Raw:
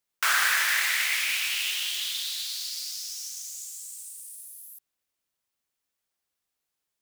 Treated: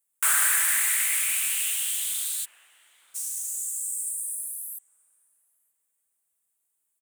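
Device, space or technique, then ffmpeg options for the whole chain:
budget condenser microphone: -filter_complex "[0:a]asplit=3[a][b][c];[a]afade=t=out:st=2.44:d=0.02[d];[b]lowpass=f=1.2k:w=0.5412,lowpass=f=1.2k:w=1.3066,afade=t=in:st=2.44:d=0.02,afade=t=out:st=3.14:d=0.02[e];[c]afade=t=in:st=3.14:d=0.02[f];[d][e][f]amix=inputs=3:normalize=0,highpass=93,highshelf=f=6.7k:t=q:w=3:g=10,asplit=2[g][h];[h]adelay=930,lowpass=f=1.2k:p=1,volume=-17dB,asplit=2[i][j];[j]adelay=930,lowpass=f=1.2k:p=1,volume=0.52,asplit=2[k][l];[l]adelay=930,lowpass=f=1.2k:p=1,volume=0.52,asplit=2[m][n];[n]adelay=930,lowpass=f=1.2k:p=1,volume=0.52,asplit=2[o][p];[p]adelay=930,lowpass=f=1.2k:p=1,volume=0.52[q];[g][i][k][m][o][q]amix=inputs=6:normalize=0,volume=-4dB"

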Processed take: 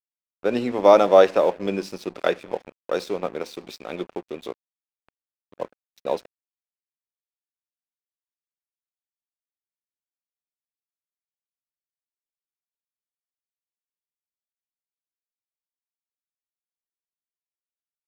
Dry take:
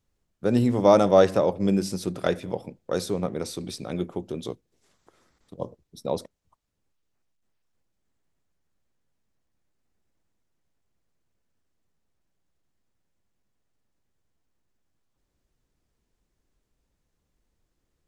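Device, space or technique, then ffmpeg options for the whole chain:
pocket radio on a weak battery: -af "highpass=370,lowpass=4.5k,aeval=exprs='sgn(val(0))*max(abs(val(0))-0.00531,0)':c=same,equalizer=f=2.5k:t=o:w=0.26:g=5.5,volume=4.5dB"

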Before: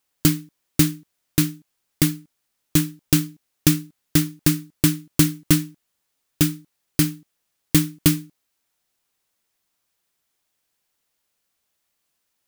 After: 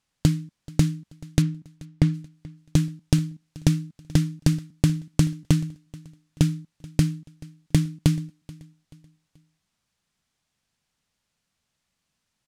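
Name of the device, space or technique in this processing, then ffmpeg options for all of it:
jukebox: -filter_complex "[0:a]lowpass=7.6k,lowshelf=f=260:t=q:w=1.5:g=8,acompressor=threshold=-17dB:ratio=4,asplit=3[a][b][c];[a]afade=t=out:st=1.41:d=0.02[d];[b]aemphasis=mode=reproduction:type=75fm,afade=t=in:st=1.41:d=0.02,afade=t=out:st=2.13:d=0.02[e];[c]afade=t=in:st=2.13:d=0.02[f];[d][e][f]amix=inputs=3:normalize=0,aecho=1:1:432|864|1296:0.0794|0.0302|0.0115"

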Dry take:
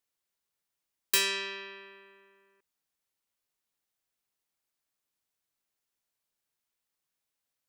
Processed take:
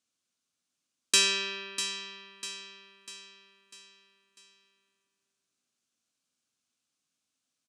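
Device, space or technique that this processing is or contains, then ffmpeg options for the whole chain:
car door speaker: -af "highpass=110,equalizer=f=250:t=q:w=4:g=8,equalizer=f=420:t=q:w=4:g=-6,equalizer=f=610:t=q:w=4:g=-4,equalizer=f=890:t=q:w=4:g=-10,equalizer=f=1.9k:t=q:w=4:g=-9,equalizer=f=6.3k:t=q:w=4:g=3,lowpass=f=9.2k:w=0.5412,lowpass=f=9.2k:w=1.3066,aecho=1:1:647|1294|1941|2588|3235:0.316|0.149|0.0699|0.0328|0.0154,volume=5dB"

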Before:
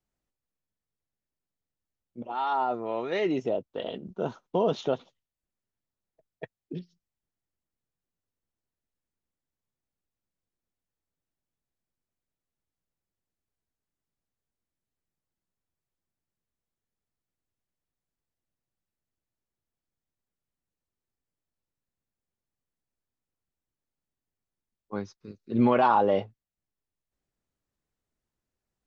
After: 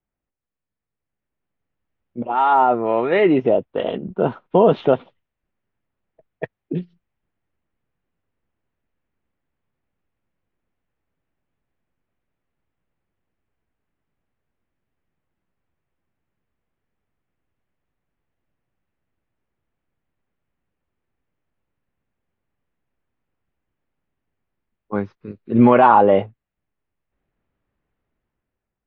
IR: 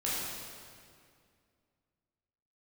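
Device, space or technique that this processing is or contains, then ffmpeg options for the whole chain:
action camera in a waterproof case: -af "lowpass=f=2.7k:w=0.5412,lowpass=f=2.7k:w=1.3066,dynaudnorm=f=510:g=5:m=11.5dB,volume=1dB" -ar 22050 -c:a aac -b:a 48k

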